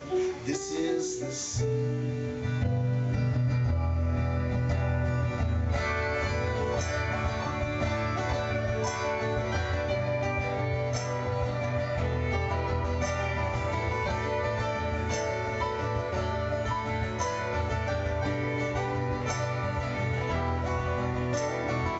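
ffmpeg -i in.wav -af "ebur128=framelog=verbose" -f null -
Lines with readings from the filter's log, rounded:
Integrated loudness:
  I:         -29.8 LUFS
  Threshold: -39.7 LUFS
Loudness range:
  LRA:         1.9 LU
  Threshold: -49.7 LUFS
  LRA low:   -30.3 LUFS
  LRA high:  -28.5 LUFS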